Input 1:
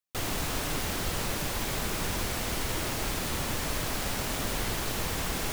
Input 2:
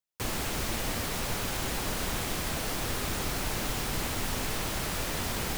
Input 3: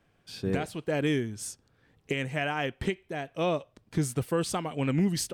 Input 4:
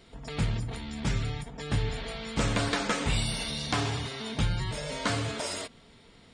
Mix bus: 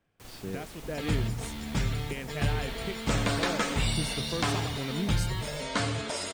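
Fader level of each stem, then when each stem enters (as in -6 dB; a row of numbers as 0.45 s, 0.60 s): -20.0 dB, -17.5 dB, -7.5 dB, 0.0 dB; 0.10 s, 0.00 s, 0.00 s, 0.70 s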